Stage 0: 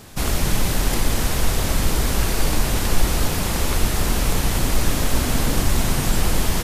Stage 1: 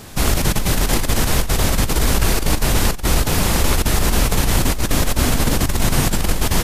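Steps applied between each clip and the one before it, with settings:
compressor whose output falls as the input rises −18 dBFS, ratio −0.5
level +3.5 dB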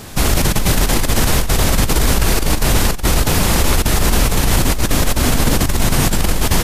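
boost into a limiter +6.5 dB
level −2.5 dB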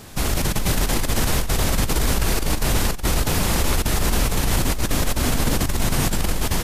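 automatic gain control gain up to 4.5 dB
level −7.5 dB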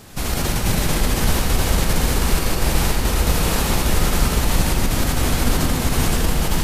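convolution reverb RT60 2.0 s, pre-delay 66 ms, DRR −1.5 dB
level −2 dB

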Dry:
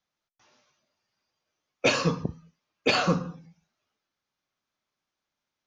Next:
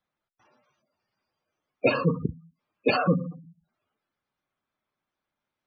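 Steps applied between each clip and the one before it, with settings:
high-shelf EQ 3,900 Hz −10.5 dB
gate on every frequency bin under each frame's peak −15 dB strong
level +2.5 dB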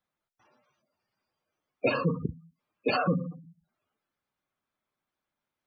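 brickwall limiter −14 dBFS, peak gain reduction 4 dB
level −2 dB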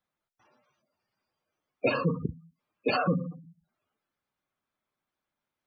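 no processing that can be heard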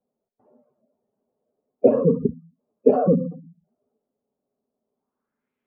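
low-pass filter sweep 660 Hz → 2,500 Hz, 0:04.90–0:05.55
hollow resonant body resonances 240/410 Hz, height 18 dB, ringing for 50 ms
level −3 dB

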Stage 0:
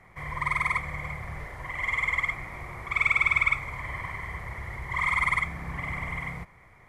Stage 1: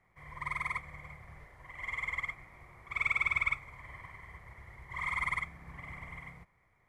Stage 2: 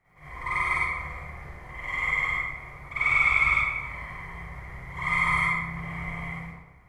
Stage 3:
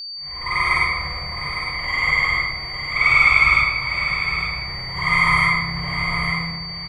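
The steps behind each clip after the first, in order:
expander for the loud parts 1.5 to 1, over −39 dBFS; level −7 dB
convolution reverb RT60 1.1 s, pre-delay 43 ms, DRR −11.5 dB; level −1 dB
fade in at the beginning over 0.69 s; steady tone 4,600 Hz −37 dBFS; single-tap delay 858 ms −9 dB; level +7.5 dB

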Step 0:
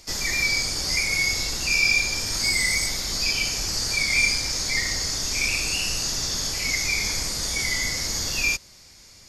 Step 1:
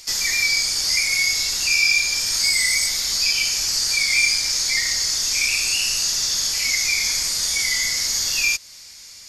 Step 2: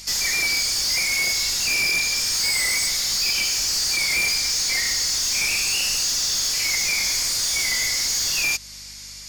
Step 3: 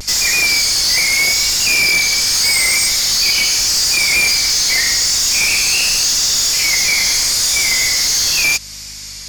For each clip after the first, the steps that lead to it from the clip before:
tilt shelving filter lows −8 dB, about 1,100 Hz; in parallel at +0.5 dB: downward compressor, threshold −24 dBFS, peak gain reduction 12.5 dB; on the sum: level −5 dB
soft clipping −21.5 dBFS, distortion −10 dB; mains hum 50 Hz, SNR 28 dB; level +3 dB
pitch vibrato 0.82 Hz 51 cents; level +8 dB

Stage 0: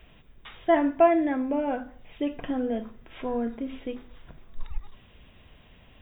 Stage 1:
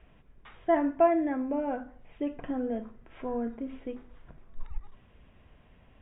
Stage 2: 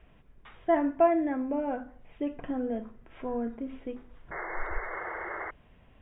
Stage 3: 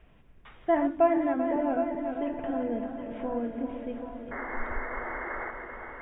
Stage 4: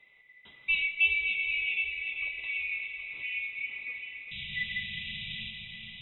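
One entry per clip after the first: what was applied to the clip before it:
low-pass filter 2,000 Hz 12 dB per octave; level −3.5 dB
sound drawn into the spectrogram noise, 0:04.31–0:05.51, 320–2,200 Hz −37 dBFS
feedback delay that plays each chunk backwards 195 ms, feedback 79%, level −9 dB; echo with a time of its own for lows and highs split 360 Hz, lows 206 ms, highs 761 ms, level −11.5 dB
neighbouring bands swapped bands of 2,000 Hz; convolution reverb RT60 4.6 s, pre-delay 70 ms, DRR 10.5 dB; level −4 dB

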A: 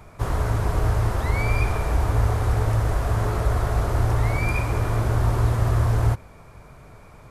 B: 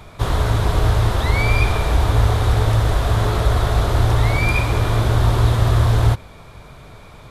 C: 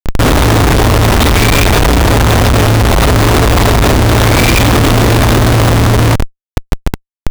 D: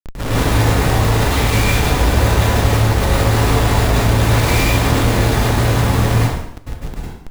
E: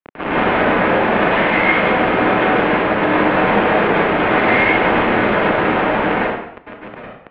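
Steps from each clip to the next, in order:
parametric band 3,600 Hz +11.5 dB 0.6 octaves; level +5 dB
in parallel at −9 dB: wrap-around overflow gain 18.5 dB; on the sum: hollow resonant body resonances 270/3,600 Hz, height 13 dB, ringing for 30 ms; comparator with hysteresis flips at −26 dBFS; level +7.5 dB
brickwall limiter −7 dBFS, peak gain reduction 5.5 dB; dense smooth reverb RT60 0.74 s, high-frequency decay 0.9×, pre-delay 90 ms, DRR −8 dB; level −14 dB
single-sideband voice off tune −240 Hz 480–2,900 Hz; level +7 dB

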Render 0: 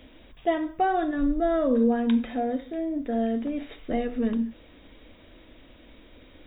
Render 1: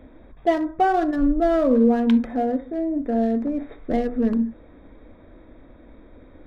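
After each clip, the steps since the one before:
adaptive Wiener filter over 15 samples
level +5 dB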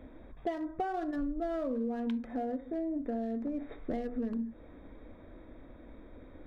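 downward compressor, threshold −28 dBFS, peak gain reduction 14 dB
level −4 dB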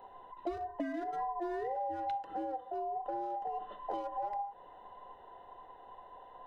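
frequency inversion band by band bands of 1,000 Hz
level −3 dB

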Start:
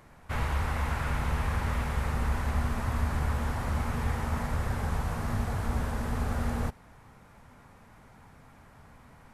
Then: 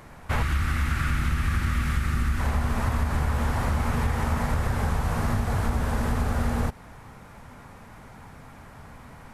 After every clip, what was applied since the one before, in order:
gain on a spectral selection 0:00.42–0:02.40, 380–1,100 Hz −13 dB
downward compressor, threshold −29 dBFS, peak gain reduction 7 dB
level +8.5 dB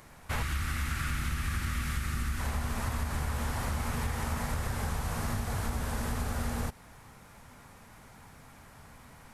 high-shelf EQ 3,100 Hz +10 dB
level −8 dB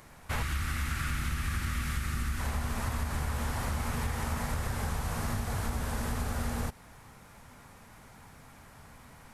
no processing that can be heard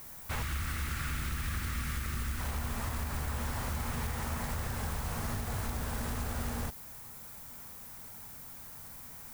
background noise violet −46 dBFS
in parallel at −7 dB: wrap-around overflow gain 25 dB
on the sum: level −5.5 dB

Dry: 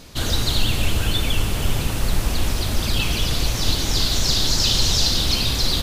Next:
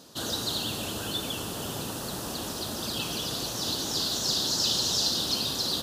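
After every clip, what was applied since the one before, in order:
high-pass filter 200 Hz 12 dB per octave
parametric band 2,200 Hz −15 dB 0.48 octaves
level −5 dB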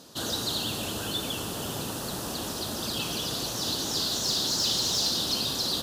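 tube saturation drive 20 dB, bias 0.2
level +1.5 dB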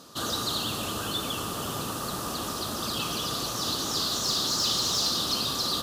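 hollow resonant body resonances 1,200 Hz, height 13 dB, ringing for 25 ms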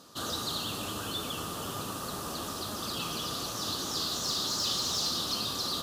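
flanger 1.1 Hz, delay 9.6 ms, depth 3.3 ms, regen +71%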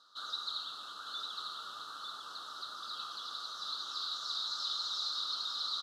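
pair of resonant band-passes 2,300 Hz, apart 1.5 octaves
single-tap delay 901 ms −4.5 dB

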